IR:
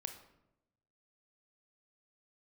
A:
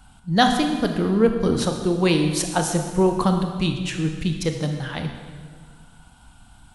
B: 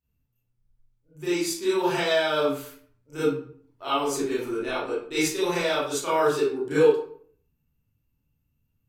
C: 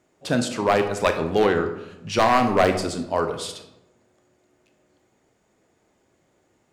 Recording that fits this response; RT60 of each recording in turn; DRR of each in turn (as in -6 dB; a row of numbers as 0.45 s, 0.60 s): C; 1.7 s, 0.55 s, 0.90 s; 4.5 dB, -11.0 dB, 6.0 dB